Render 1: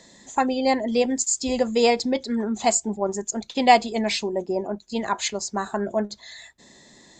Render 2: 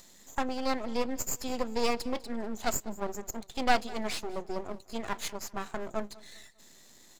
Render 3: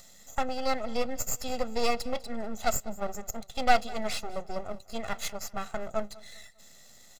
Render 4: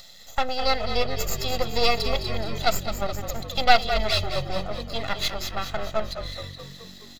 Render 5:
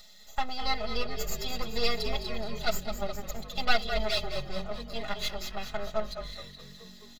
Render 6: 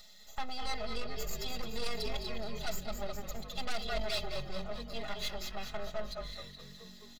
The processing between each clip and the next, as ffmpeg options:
-filter_complex "[0:a]acrossover=split=180|680|4500[a][b][c][d];[d]acompressor=mode=upward:threshold=-39dB:ratio=2.5[e];[a][b][c][e]amix=inputs=4:normalize=0,aeval=exprs='max(val(0),0)':c=same,aecho=1:1:199|398|597:0.0841|0.0337|0.0135,volume=-6dB"
-af "aecho=1:1:1.5:0.65"
-filter_complex "[0:a]equalizer=f=250:t=o:w=1:g=-6,equalizer=f=4k:t=o:w=1:g=11,equalizer=f=8k:t=o:w=1:g=-10,asplit=2[a][b];[b]asplit=8[c][d][e][f][g][h][i][j];[c]adelay=211,afreqshift=-47,volume=-9.5dB[k];[d]adelay=422,afreqshift=-94,volume=-13.8dB[l];[e]adelay=633,afreqshift=-141,volume=-18.1dB[m];[f]adelay=844,afreqshift=-188,volume=-22.4dB[n];[g]adelay=1055,afreqshift=-235,volume=-26.7dB[o];[h]adelay=1266,afreqshift=-282,volume=-31dB[p];[i]adelay=1477,afreqshift=-329,volume=-35.3dB[q];[j]adelay=1688,afreqshift=-376,volume=-39.6dB[r];[k][l][m][n][o][p][q][r]amix=inputs=8:normalize=0[s];[a][s]amix=inputs=2:normalize=0,volume=5dB"
-af "aecho=1:1:4.8:0.88,volume=-9dB"
-af "asoftclip=type=tanh:threshold=-24.5dB,volume=-2.5dB"

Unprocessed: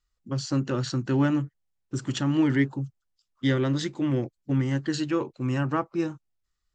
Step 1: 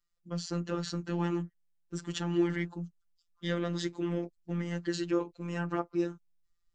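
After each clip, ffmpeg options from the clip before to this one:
-af "asubboost=boost=2.5:cutoff=53,afftfilt=real='hypot(re,im)*cos(PI*b)':imag='0':win_size=1024:overlap=0.75,volume=-2dB"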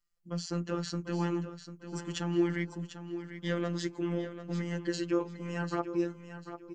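-af "bandreject=f=3.7k:w=9.2,aecho=1:1:745|1490|2235:0.282|0.0705|0.0176"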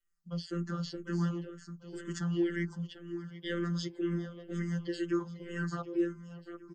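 -filter_complex "[0:a]aecho=1:1:5.2:0.92,acrossover=split=300|1100|1900[a][b][c][d];[c]asoftclip=type=tanh:threshold=-38.5dB[e];[a][b][e][d]amix=inputs=4:normalize=0,asplit=2[f][g];[g]afreqshift=-2[h];[f][h]amix=inputs=2:normalize=1,volume=-2.5dB"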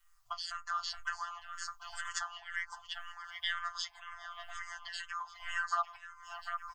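-af "acompressor=threshold=-44dB:ratio=6,afftfilt=real='re*(1-between(b*sr/4096,110,630))':imag='im*(1-between(b*sr/4096,110,630))':win_size=4096:overlap=0.75,equalizer=f=1.1k:w=3.6:g=10,volume=14.5dB"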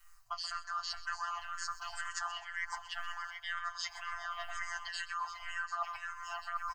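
-af "areverse,acompressor=threshold=-44dB:ratio=6,areverse,bandreject=f=3.4k:w=6.2,aecho=1:1:129|258|387|516:0.15|0.0613|0.0252|0.0103,volume=8.5dB"

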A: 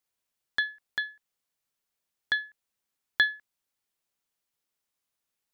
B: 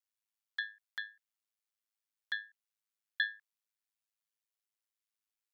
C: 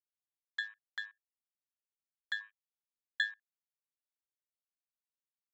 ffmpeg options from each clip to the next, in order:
-af "aeval=exprs='val(0)*sin(2*PI*53*n/s)':c=same,highpass=1.1k,volume=-6dB"
-af "afwtdn=0.002"

